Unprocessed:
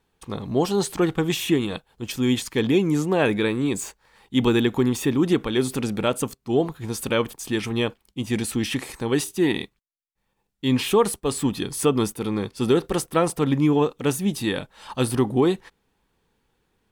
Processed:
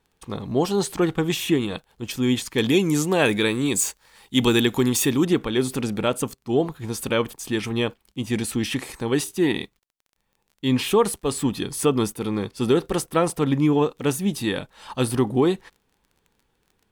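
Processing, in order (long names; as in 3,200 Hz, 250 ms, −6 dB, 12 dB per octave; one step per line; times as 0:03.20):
0:02.58–0:05.25: high-shelf EQ 3,200 Hz +11.5 dB
surface crackle 27 per second −44 dBFS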